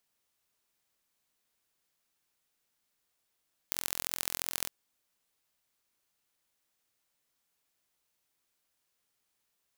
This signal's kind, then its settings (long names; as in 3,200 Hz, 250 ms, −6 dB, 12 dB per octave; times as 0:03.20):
impulse train 43 per second, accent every 3, −3 dBFS 0.96 s